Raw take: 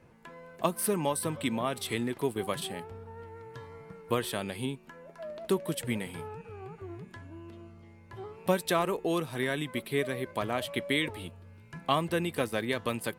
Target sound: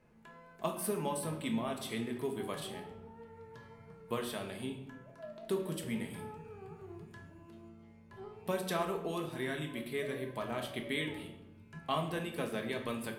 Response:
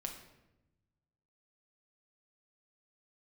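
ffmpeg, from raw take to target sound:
-filter_complex "[0:a]asettb=1/sr,asplit=3[s0][s1][s2];[s0]atrim=end=6.104[s3];[s1]atrim=start=6.1:end=7.69,asetpts=PTS-STARTPTS,afade=t=in:d=0.004:c=qsin,afade=t=out:st=1.586:d=0.004:c=qsin,highshelf=f=8000:g=8.5[s4];[s2]atrim=start=7.686[s5];[s3][s4]acrossfade=d=0.004:c1=hsin:c2=qsin[s6];[s6][s5]acrossfade=d=0.004:c1=qsin:c2=hsin[s7];[1:a]atrim=start_sample=2205,asetrate=52920,aresample=44100[s8];[s7][s8]afir=irnorm=-1:irlink=0,volume=0.668"

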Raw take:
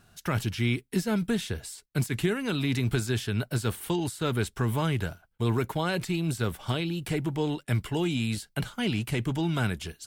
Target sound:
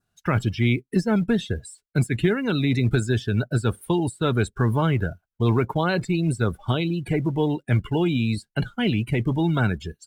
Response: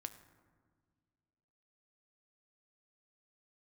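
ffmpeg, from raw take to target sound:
-af "adynamicequalizer=threshold=0.00282:dfrequency=2900:dqfactor=3:tfrequency=2900:tqfactor=3:attack=5:release=100:ratio=0.375:range=2:mode=cutabove:tftype=bell,acrusher=bits=4:mode=log:mix=0:aa=0.000001,afftdn=nr=23:nf=-37,volume=2"

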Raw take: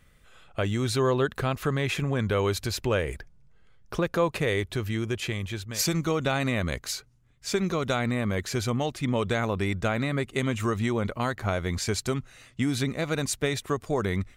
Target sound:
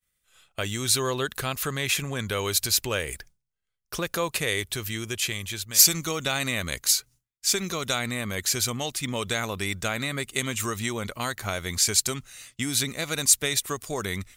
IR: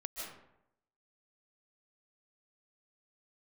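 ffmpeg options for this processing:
-af "crystalizer=i=7.5:c=0,agate=range=0.0224:threshold=0.0112:ratio=3:detection=peak,volume=0.531"

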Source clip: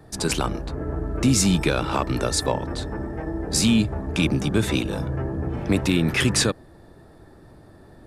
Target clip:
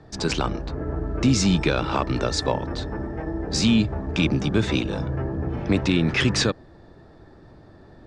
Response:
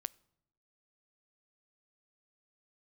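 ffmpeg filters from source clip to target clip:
-af "lowpass=f=6200:w=0.5412,lowpass=f=6200:w=1.3066"

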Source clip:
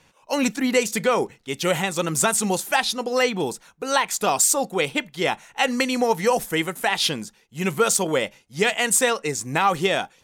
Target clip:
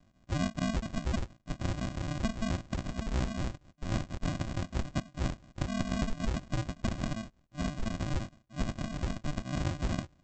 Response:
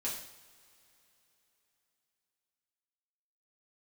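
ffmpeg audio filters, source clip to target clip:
-af "acompressor=threshold=0.0891:ratio=6,aresample=16000,acrusher=samples=36:mix=1:aa=0.000001,aresample=44100,volume=0.473"

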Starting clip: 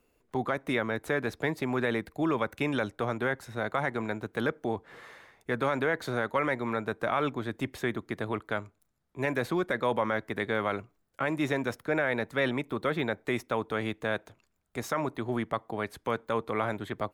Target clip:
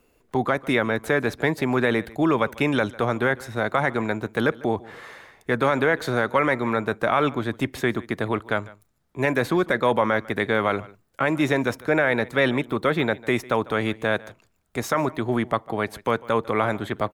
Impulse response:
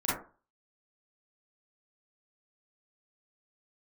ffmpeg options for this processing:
-af "aecho=1:1:149:0.0891,volume=2.37"

